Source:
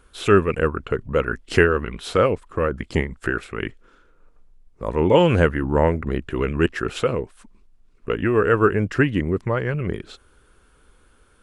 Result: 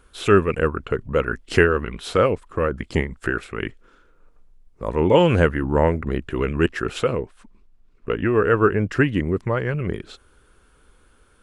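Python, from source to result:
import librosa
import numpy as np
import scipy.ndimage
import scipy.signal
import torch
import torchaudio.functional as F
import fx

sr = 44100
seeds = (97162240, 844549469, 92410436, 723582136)

y = fx.high_shelf(x, sr, hz=7000.0, db=-10.5, at=(7.17, 8.89))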